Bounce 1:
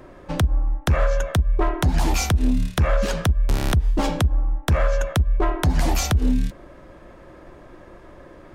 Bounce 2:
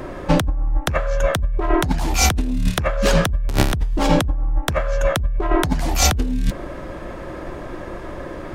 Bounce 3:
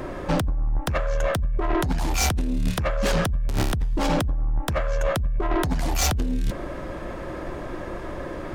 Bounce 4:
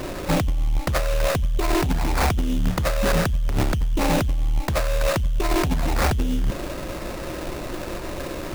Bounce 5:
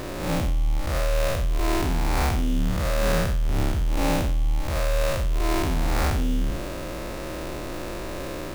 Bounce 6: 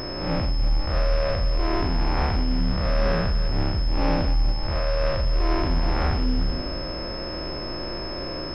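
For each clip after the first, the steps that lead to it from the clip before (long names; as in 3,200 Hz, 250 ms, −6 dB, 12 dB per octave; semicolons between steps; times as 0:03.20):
compressor whose output falls as the input rises −25 dBFS, ratio −1; level +7 dB
soft clipping −16.5 dBFS, distortion −11 dB; level −1 dB
sample-rate reduction 3,200 Hz, jitter 20%; level +2 dB
spectrum smeared in time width 158 ms
feedback delay that plays each chunk backwards 174 ms, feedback 49%, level −11.5 dB; switching amplifier with a slow clock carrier 5,200 Hz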